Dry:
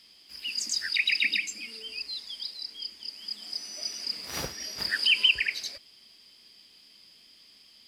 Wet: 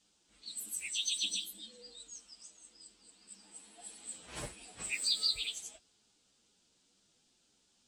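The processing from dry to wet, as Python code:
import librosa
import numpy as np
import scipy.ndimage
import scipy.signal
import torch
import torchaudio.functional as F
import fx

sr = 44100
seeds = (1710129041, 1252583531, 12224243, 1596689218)

y = fx.partial_stretch(x, sr, pct=117)
y = fx.env_lowpass(y, sr, base_hz=2100.0, full_db=-31.5)
y = fx.dmg_noise_band(y, sr, seeds[0], low_hz=2900.0, high_hz=8500.0, level_db=-71.0)
y = F.gain(torch.from_numpy(y), -3.5).numpy()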